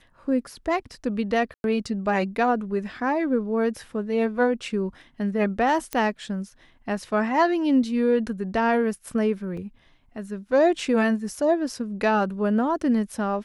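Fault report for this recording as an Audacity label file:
1.540000	1.640000	drop-out 101 ms
5.930000	5.930000	click −12 dBFS
9.570000	9.570000	drop-out 4.3 ms

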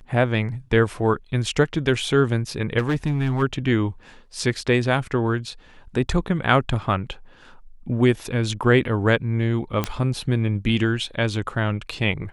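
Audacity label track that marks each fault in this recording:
2.780000	3.430000	clipping −17.5 dBFS
9.840000	9.840000	click −8 dBFS

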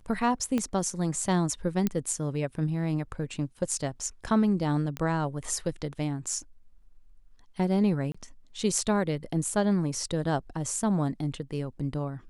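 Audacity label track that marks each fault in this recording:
0.580000	0.580000	click −16 dBFS
1.870000	1.870000	click −13 dBFS
4.970000	4.970000	click −18 dBFS
8.120000	8.140000	drop-out 25 ms

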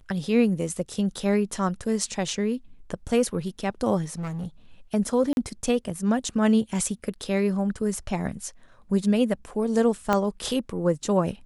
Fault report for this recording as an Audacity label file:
4.130000	4.470000	clipping −28 dBFS
5.330000	5.370000	drop-out 41 ms
10.130000	10.130000	click −9 dBFS

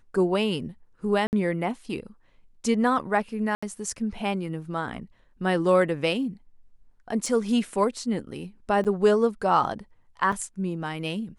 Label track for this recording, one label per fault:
1.270000	1.330000	drop-out 59 ms
3.550000	3.620000	drop-out 75 ms
7.260000	7.260000	drop-out 2.3 ms
8.840000	8.850000	drop-out 8.2 ms
10.320000	10.330000	drop-out 5.2 ms

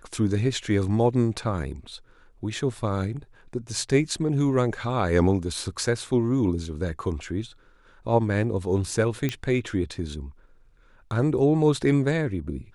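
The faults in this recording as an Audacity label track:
9.290000	9.290000	click −13 dBFS

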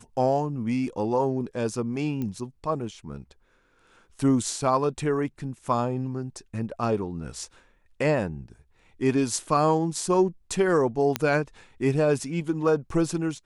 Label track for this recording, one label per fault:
2.220000	2.220000	click −20 dBFS
11.160000	11.160000	click −8 dBFS

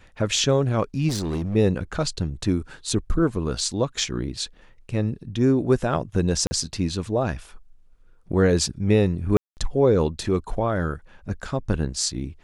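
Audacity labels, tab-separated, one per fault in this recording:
1.080000	1.560000	clipping −22.5 dBFS
6.470000	6.510000	drop-out 40 ms
9.370000	9.570000	drop-out 199 ms

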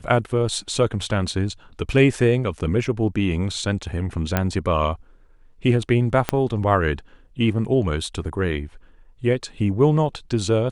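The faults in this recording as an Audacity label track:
4.370000	4.370000	click −6 dBFS
6.290000	6.290000	click −5 dBFS

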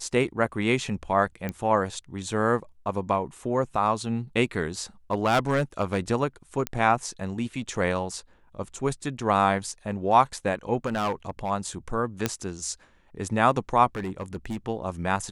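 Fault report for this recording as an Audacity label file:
1.490000	1.490000	click −17 dBFS
5.110000	5.990000	clipping −16.5 dBFS
6.670000	6.670000	click −11 dBFS
10.860000	11.510000	clipping −22 dBFS
12.260000	12.260000	click −8 dBFS
13.950000	14.570000	clipping −26.5 dBFS

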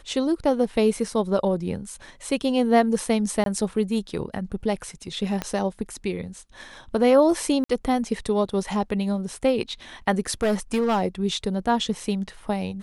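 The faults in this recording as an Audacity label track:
3.440000	3.460000	drop-out 22 ms
5.420000	5.420000	click −12 dBFS
7.640000	7.690000	drop-out 54 ms
10.300000	11.020000	clipping −17.5 dBFS

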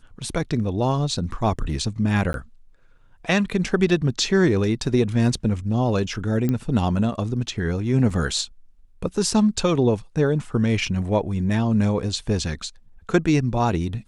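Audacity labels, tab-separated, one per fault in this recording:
2.330000	2.340000	drop-out 12 ms
6.490000	6.490000	click −12 dBFS
8.100000	8.100000	drop-out 4.3 ms

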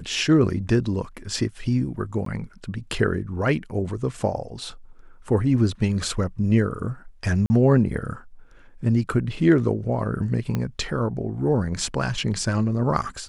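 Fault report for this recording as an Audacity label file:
2.250000	2.260000	drop-out 13 ms
7.460000	7.500000	drop-out 40 ms
10.550000	10.550000	click −13 dBFS

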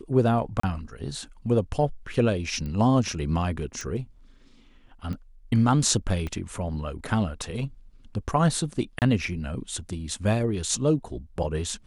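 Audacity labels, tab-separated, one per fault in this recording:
0.600000	0.630000	drop-out 34 ms
2.660000	2.660000	click −24 dBFS
3.810000	3.810000	click
5.130000	5.130000	click −24 dBFS
6.270000	6.270000	click −20 dBFS
8.990000	9.020000	drop-out 28 ms

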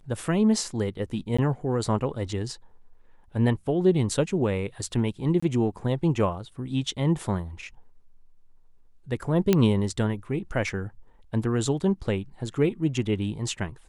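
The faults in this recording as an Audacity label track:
1.370000	1.390000	drop-out 15 ms
5.400000	5.420000	drop-out 25 ms
9.530000	9.530000	click −7 dBFS

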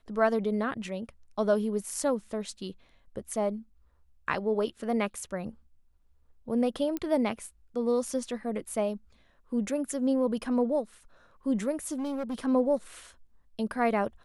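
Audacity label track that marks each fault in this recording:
6.970000	6.970000	click −19 dBFS
11.980000	12.390000	clipping −29.5 dBFS

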